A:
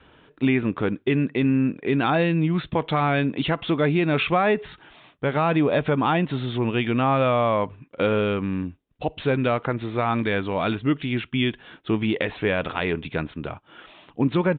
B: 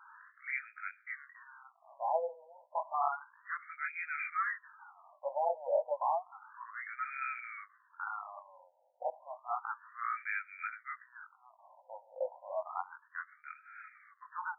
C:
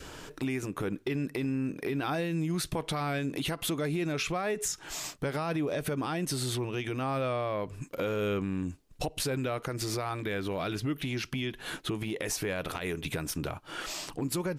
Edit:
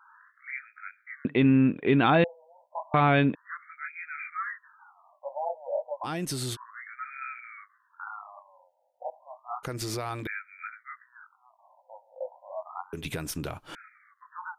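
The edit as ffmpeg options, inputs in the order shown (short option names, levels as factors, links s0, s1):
-filter_complex "[0:a]asplit=2[s0][s1];[2:a]asplit=3[s2][s3][s4];[1:a]asplit=6[s5][s6][s7][s8][s9][s10];[s5]atrim=end=1.252[s11];[s0]atrim=start=1.248:end=2.242[s12];[s6]atrim=start=2.238:end=2.942[s13];[s1]atrim=start=2.938:end=3.352[s14];[s7]atrim=start=3.348:end=6.07[s15];[s2]atrim=start=6.03:end=6.57[s16];[s8]atrim=start=6.53:end=9.632[s17];[s3]atrim=start=9.628:end=10.272[s18];[s9]atrim=start=10.268:end=12.932[s19];[s4]atrim=start=12.928:end=13.752[s20];[s10]atrim=start=13.748[s21];[s11][s12]acrossfade=d=0.004:c1=hsin:c2=hsin[s22];[s22][s13]acrossfade=d=0.004:c1=hsin:c2=hsin[s23];[s23][s14]acrossfade=d=0.004:c1=hsin:c2=hsin[s24];[s24][s15]acrossfade=d=0.004:c1=hsin:c2=hsin[s25];[s25][s16]acrossfade=d=0.04:c1=tri:c2=tri[s26];[s26][s17]acrossfade=d=0.04:c1=tri:c2=tri[s27];[s27][s18]acrossfade=d=0.004:c1=hsin:c2=hsin[s28];[s28][s19]acrossfade=d=0.004:c1=hsin:c2=hsin[s29];[s29][s20]acrossfade=d=0.004:c1=hsin:c2=hsin[s30];[s30][s21]acrossfade=d=0.004:c1=hsin:c2=hsin"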